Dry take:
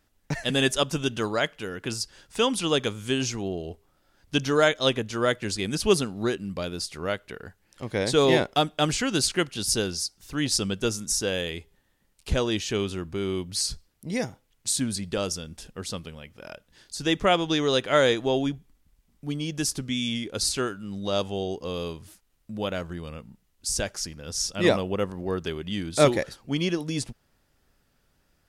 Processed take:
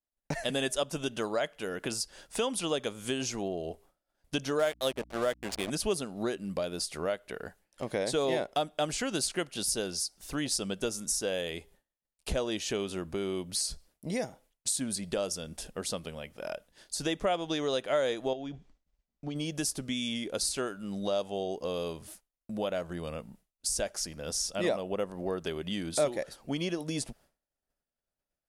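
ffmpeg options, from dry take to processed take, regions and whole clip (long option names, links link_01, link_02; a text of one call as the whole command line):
ffmpeg -i in.wav -filter_complex "[0:a]asettb=1/sr,asplit=3[link_01][link_02][link_03];[link_01]atrim=end=4.594[link_04];[link_02]atrim=start=4.59:end=5.7,asetpts=PTS-STARTPTS,afade=type=in:duration=0.004:curve=qsin,afade=type=out:start_time=1.106:duration=0.004:curve=qsin,aeval=exprs='val(0)*gte(abs(val(0)),0.0335)':channel_layout=same,adynamicsmooth=sensitivity=7:basefreq=630,aeval=exprs='val(0)+0.00355*(sin(2*PI*60*n/s)+sin(2*PI*2*60*n/s)/2+sin(2*PI*3*60*n/s)/3+sin(2*PI*4*60*n/s)/4+sin(2*PI*5*60*n/s)/5)':channel_layout=same[link_05];[link_03]atrim=start=5.696[link_06];[link_04][link_05]acrossfade=duration=0.004:curve1=hsin:curve2=qsin[link_07];[link_07][link_06]acrossfade=duration=0.004:curve1=qsin:curve2=hsin,asettb=1/sr,asplit=3[link_08][link_09][link_10];[link_08]atrim=end=18.334[link_11];[link_09]atrim=start=18.33:end=19.36,asetpts=PTS-STARTPTS,afade=type=in:duration=0.004:curve=qsin,afade=type=out:start_time=1.026:duration=0.004:curve=qsin,lowpass=frequency=6300:width=0.5412,lowpass=frequency=6300:width=1.3066,acompressor=threshold=-29dB:ratio=10:attack=3.2:release=140:knee=1:detection=peak[link_12];[link_10]atrim=start=19.356[link_13];[link_11][link_12]acrossfade=duration=0.004:curve1=hsin:curve2=qsin[link_14];[link_14][link_13]acrossfade=duration=0.004:curve1=qsin:curve2=hsin,agate=range=-33dB:threshold=-51dB:ratio=3:detection=peak,equalizer=frequency=100:width_type=o:width=0.67:gain=-9,equalizer=frequency=630:width_type=o:width=0.67:gain=8,equalizer=frequency=10000:width_type=o:width=0.67:gain=6,acompressor=threshold=-32dB:ratio=2.5" out.wav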